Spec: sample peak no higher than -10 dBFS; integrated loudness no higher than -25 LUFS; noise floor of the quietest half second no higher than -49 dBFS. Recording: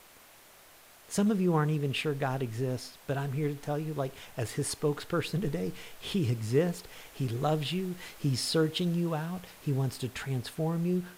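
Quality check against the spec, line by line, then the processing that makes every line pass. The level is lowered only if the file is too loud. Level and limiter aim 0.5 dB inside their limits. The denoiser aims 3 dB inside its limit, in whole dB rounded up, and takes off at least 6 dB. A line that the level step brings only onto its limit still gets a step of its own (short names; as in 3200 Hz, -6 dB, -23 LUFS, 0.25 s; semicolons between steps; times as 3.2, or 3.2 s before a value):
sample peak -14.0 dBFS: OK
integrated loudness -31.5 LUFS: OK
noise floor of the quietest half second -56 dBFS: OK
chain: none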